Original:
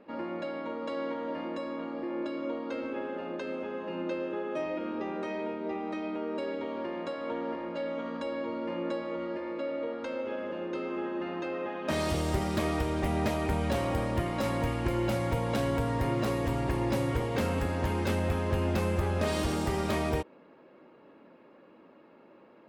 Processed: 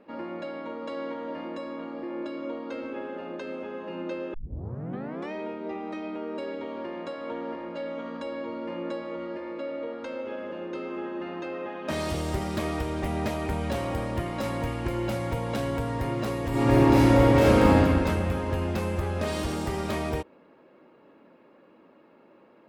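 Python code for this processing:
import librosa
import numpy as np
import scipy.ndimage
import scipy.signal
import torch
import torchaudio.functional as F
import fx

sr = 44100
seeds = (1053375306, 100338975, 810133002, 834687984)

y = fx.reverb_throw(x, sr, start_s=16.49, length_s=1.26, rt60_s=2.5, drr_db=-10.0)
y = fx.edit(y, sr, fx.tape_start(start_s=4.34, length_s=0.98), tone=tone)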